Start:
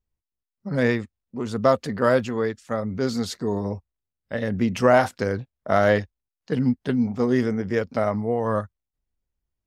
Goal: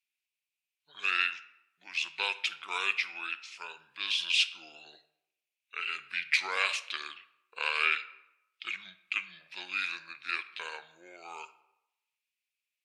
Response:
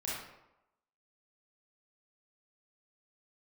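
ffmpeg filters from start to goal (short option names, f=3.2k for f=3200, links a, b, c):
-filter_complex "[0:a]asetrate=33163,aresample=44100,highpass=f=2.5k:t=q:w=6.4,asplit=2[a][b];[1:a]atrim=start_sample=2205[c];[b][c]afir=irnorm=-1:irlink=0,volume=-15.5dB[d];[a][d]amix=inputs=2:normalize=0"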